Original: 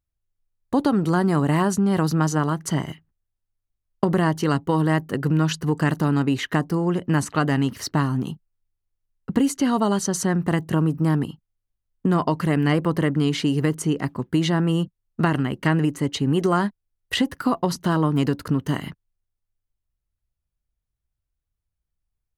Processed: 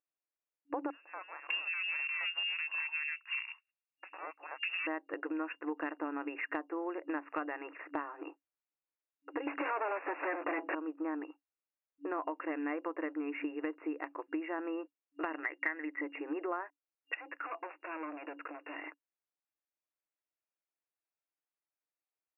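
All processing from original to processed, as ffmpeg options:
-filter_complex "[0:a]asettb=1/sr,asplit=3[a][b][c];[a]atrim=end=0.904[d];[b]atrim=start=0.9:end=4.87,asetpts=PTS-STARTPTS,afade=t=in:d=0.004:c=qsin,afade=t=out:st=3.966:d=0.004:c=qsin,lowpass=f=2.6k:t=q:w=0.5098,lowpass=f=2.6k:t=q:w=0.6013,lowpass=f=2.6k:t=q:w=0.9,lowpass=f=2.6k:t=q:w=2.563,afreqshift=-3000,aeval=exprs='0.188*(abs(mod(val(0)/0.188+3,4)-2)-1)':c=same,acrossover=split=1200[e][f];[f]adelay=600[g];[e][g]amix=inputs=2:normalize=0,atrim=end_sample=175077[h];[c]atrim=start=4.866[i];[d][h]acrossfade=d=0.004:c1=hsin:c2=qsin[j];[j][i]acrossfade=d=0.004:c1=qsin:c2=hsin,asettb=1/sr,asplit=3[k][l][m];[k]atrim=end=9.474[n];[l]atrim=start=9.47:end=10.75,asetpts=PTS-STARTPTS,afade=t=in:d=0.004:c=qsin,afade=t=out:st=1.276:d=0.004:c=qsin,highpass=f=120:p=1,asplit=2[o][p];[p]highpass=f=720:p=1,volume=38dB,asoftclip=type=tanh:threshold=-6.5dB[q];[o][q]amix=inputs=2:normalize=0,lowpass=f=1.5k:p=1,volume=-6dB[r];[m]atrim=start=10.746[s];[n][r]acrossfade=d=0.004:c1=hsin:c2=qsin[t];[t][s]acrossfade=d=0.004:c1=qsin:c2=hsin,asettb=1/sr,asplit=3[u][v][w];[u]atrim=end=15.434[x];[v]atrim=start=15.43:end=16.01,asetpts=PTS-STARTPTS,afade=t=in:d=0.004:c=qsin,afade=t=out:st=0.576:d=0.004:c=qsin,lowpass=f=2k:t=q:w=9.9,agate=range=-33dB:threshold=-36dB:ratio=3:release=100:detection=peak[y];[w]atrim=start=16.006[z];[x][y]acrossfade=d=0.004:c1=hsin:c2=qsin[aa];[aa][z]acrossfade=d=0.004:c1=qsin:c2=hsin,asettb=1/sr,asplit=3[ab][ac][ad];[ab]atrim=end=17.154[ae];[ac]atrim=start=17.15:end=18.81,asetpts=PTS-STARTPTS,afade=t=in:d=0.004:c=qsin,afade=t=out:st=1.656:d=0.004:c=qsin,equalizer=f=5.6k:w=0.52:g=14,acompressor=threshold=-24dB:ratio=6:attack=3.2:release=140:knee=1:detection=peak,volume=31dB,asoftclip=hard,volume=-31dB[af];[ad]atrim=start=18.806[ag];[ae][af]acrossfade=d=0.004:c1=hsin:c2=qsin[ah];[ah][ag]acrossfade=d=0.004:c1=qsin:c2=hsin,afftfilt=real='re*between(b*sr/4096,280,2800)':imag='im*between(b*sr/4096,280,2800)':win_size=4096:overlap=0.75,equalizer=f=390:t=o:w=0.3:g=-9,acompressor=threshold=-31dB:ratio=5,volume=-3.5dB"

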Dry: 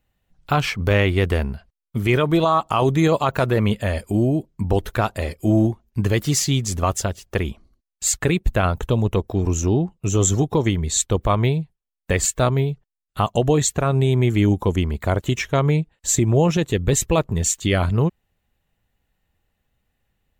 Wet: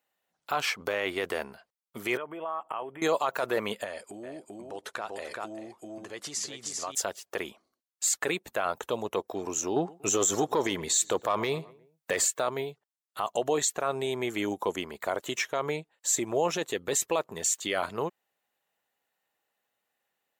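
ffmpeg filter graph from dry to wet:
-filter_complex "[0:a]asettb=1/sr,asplit=3[a][b][c];[a]atrim=end=2.174[d];[b]atrim=start=2.17:end=3.02,asetpts=PTS-STARTPTS,afade=t=in:d=0.004:c=qsin,afade=t=out:st=0.846:d=0.004:c=qsin,bass=f=250:g=-2,treble=f=4k:g=-12,acompressor=threshold=-27dB:ratio=6:attack=3.2:release=140:knee=1:detection=peak,asuperstop=centerf=5100:order=20:qfactor=1.2[e];[c]atrim=start=3.016[f];[d][e]acrossfade=d=0.004:c1=hsin:c2=qsin[g];[g][f]acrossfade=d=0.004:c1=qsin:c2=hsin,asettb=1/sr,asplit=3[h][i][j];[h]atrim=end=3.844[k];[i]atrim=start=3.84:end=6.95,asetpts=PTS-STARTPTS,afade=t=in:d=0.004:c=qsin,afade=t=out:st=3.106:d=0.004:c=qsin,lowpass=f=10k:w=0.5412,lowpass=f=10k:w=1.3066,aecho=1:1:389:0.473,atrim=end_sample=137151,acompressor=threshold=-25dB:ratio=10:attack=3.2:release=140:knee=1:detection=peak[l];[j]atrim=start=6.946[m];[k][l]acrossfade=d=0.004:c1=hsin:c2=qsin[n];[n][m]acrossfade=d=0.004:c1=qsin:c2=hsin,asettb=1/sr,asplit=3[o][p][q];[o]atrim=end=9.764[r];[p]atrim=start=9.76:end=12.25,asetpts=PTS-STARTPTS,afade=t=in:d=0.004:c=qsin,afade=t=out:st=2.486:d=0.004:c=qsin,acontrast=81,asplit=2[s][t];[t]adelay=119,lowpass=f=1.8k:p=1,volume=-23dB,asplit=2[u][v];[v]adelay=119,lowpass=f=1.8k:p=1,volume=0.5,asplit=2[w][x];[x]adelay=119,lowpass=f=1.8k:p=1,volume=0.5[y];[s][u][w][y]amix=inputs=4:normalize=0,atrim=end_sample=109809[z];[q]atrim=start=12.246[aa];[r][z]acrossfade=d=0.004:c1=hsin:c2=qsin[ab];[ab][aa]acrossfade=d=0.004:c1=qsin:c2=hsin,highpass=540,equalizer=f=2.7k:w=1.1:g=-3.5,alimiter=limit=-15dB:level=0:latency=1:release=25,volume=-1.5dB"

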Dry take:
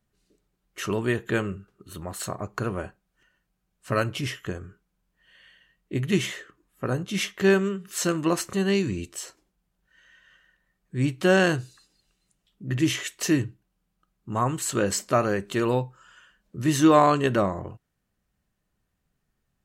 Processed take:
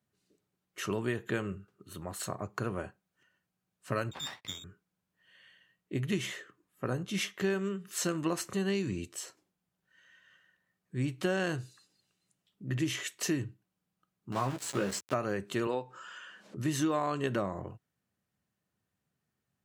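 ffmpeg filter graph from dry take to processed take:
-filter_complex "[0:a]asettb=1/sr,asplit=3[a][b][c];[a]atrim=end=4.114[d];[b]atrim=start=4.11:end=4.64,asetpts=PTS-STARTPTS,afade=t=in:d=0.004:c=qsin,afade=t=out:st=0.526:d=0.004:c=qsin,lowpass=f=3.2k:t=q:w=0.5098,lowpass=f=3.2k:t=q:w=0.6013,lowpass=f=3.2k:t=q:w=0.9,lowpass=f=3.2k:t=q:w=2.563,afreqshift=-3800,agate=range=-20dB:threshold=-49dB:ratio=16:release=100:detection=peak,aeval=exprs='max(val(0),0)':c=same[e];[c]atrim=start=4.636[f];[d][e]acrossfade=d=0.004:c1=hsin:c2=qsin[g];[g][f]acrossfade=d=0.004:c1=qsin:c2=hsin,asettb=1/sr,asplit=3[h][i][j];[h]atrim=end=14.324[k];[i]atrim=start=14.32:end=15.14,asetpts=PTS-STARTPTS,afade=t=in:d=0.004:c=qsin,afade=t=out:st=0.816:d=0.004:c=qsin,aeval=exprs='val(0)*gte(abs(val(0)),0.0355)':c=same,highshelf=f=8.4k:g=-10.5,asplit=2[l][m];[m]adelay=15,volume=-6.5dB[n];[l][n]amix=inputs=2:normalize=0,atrim=end_sample=36162[o];[j]atrim=start=15.136[p];[k][o]acrossfade=d=0.004:c1=hsin:c2=qsin[q];[q][p]acrossfade=d=0.004:c1=qsin:c2=hsin,asettb=1/sr,asplit=3[r][s][t];[r]atrim=end=15.674[u];[s]atrim=start=15.67:end=16.57,asetpts=PTS-STARTPTS,afade=t=in:d=0.004:c=qsin,afade=t=out:st=0.896:d=0.004:c=qsin,highpass=290,lowpass=7k,acompressor=mode=upward:threshold=-30dB:ratio=2.5:attack=3.2:release=140:knee=2.83:detection=peak[v];[t]atrim=start=16.566[w];[u][v]acrossfade=d=0.004:c1=hsin:c2=qsin[x];[x][w]acrossfade=d=0.004:c1=qsin:c2=hsin,highpass=f=84:w=0.5412,highpass=f=84:w=1.3066,acompressor=threshold=-22dB:ratio=6,volume=-5dB"

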